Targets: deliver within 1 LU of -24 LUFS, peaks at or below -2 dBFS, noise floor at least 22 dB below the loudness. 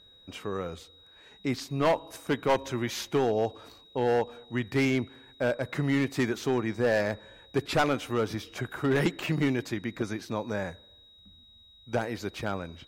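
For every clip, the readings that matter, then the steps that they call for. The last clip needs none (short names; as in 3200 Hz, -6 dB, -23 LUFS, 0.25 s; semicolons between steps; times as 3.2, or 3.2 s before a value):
clipped 1.1%; flat tops at -19.0 dBFS; steady tone 3800 Hz; tone level -54 dBFS; loudness -30.0 LUFS; peak -19.0 dBFS; loudness target -24.0 LUFS
-> clip repair -19 dBFS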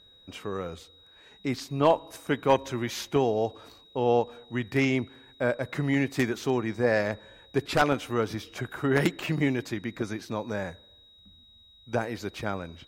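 clipped 0.0%; steady tone 3800 Hz; tone level -54 dBFS
-> notch 3800 Hz, Q 30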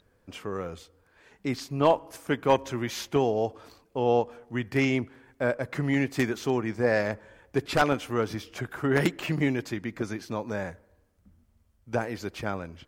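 steady tone none; loudness -28.5 LUFS; peak -9.5 dBFS; loudness target -24.0 LUFS
-> gain +4.5 dB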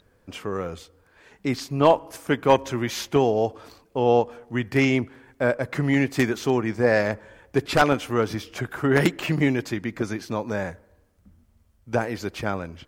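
loudness -24.0 LUFS; peak -5.0 dBFS; noise floor -62 dBFS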